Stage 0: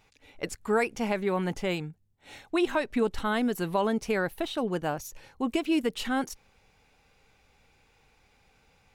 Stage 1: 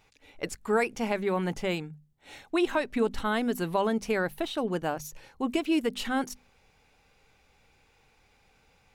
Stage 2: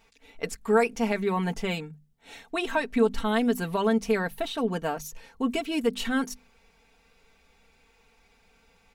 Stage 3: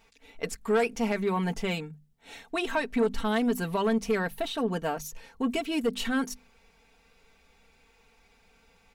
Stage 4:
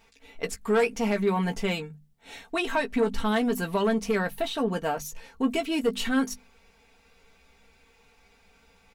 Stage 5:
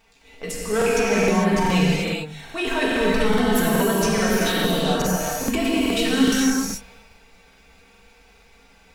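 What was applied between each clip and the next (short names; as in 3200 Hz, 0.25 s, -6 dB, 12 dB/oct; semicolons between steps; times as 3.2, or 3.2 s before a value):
notches 50/100/150/200/250 Hz
comb 4.4 ms, depth 72%
soft clip -18 dBFS, distortion -15 dB
doubler 15 ms -8.5 dB; gain +1.5 dB
transient shaper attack -5 dB, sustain +10 dB; non-linear reverb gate 0.47 s flat, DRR -5.5 dB; crackling interface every 0.42 s, samples 2048, repeat, from 0.77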